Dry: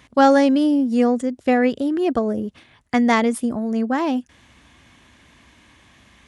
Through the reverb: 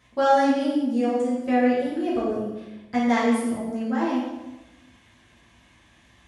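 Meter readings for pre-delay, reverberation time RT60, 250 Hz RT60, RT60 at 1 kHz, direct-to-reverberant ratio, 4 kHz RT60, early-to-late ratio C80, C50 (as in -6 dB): 3 ms, 1.0 s, 1.2 s, 1.0 s, -8.0 dB, 0.85 s, 3.5 dB, 1.0 dB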